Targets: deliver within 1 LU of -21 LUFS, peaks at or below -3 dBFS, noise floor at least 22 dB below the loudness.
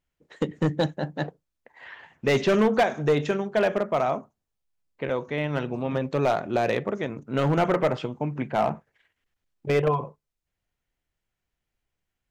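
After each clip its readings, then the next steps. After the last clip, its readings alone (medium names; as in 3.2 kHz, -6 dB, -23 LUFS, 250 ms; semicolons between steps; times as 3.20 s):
clipped samples 0.9%; clipping level -15.0 dBFS; loudness -26.0 LUFS; peak level -15.0 dBFS; loudness target -21.0 LUFS
-> clip repair -15 dBFS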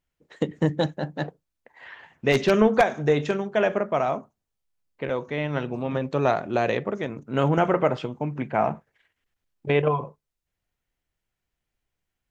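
clipped samples 0.0%; loudness -25.0 LUFS; peak level -6.0 dBFS; loudness target -21.0 LUFS
-> trim +4 dB; peak limiter -3 dBFS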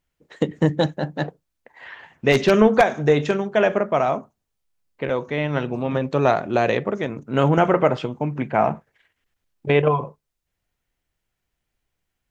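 loudness -21.0 LUFS; peak level -3.0 dBFS; noise floor -79 dBFS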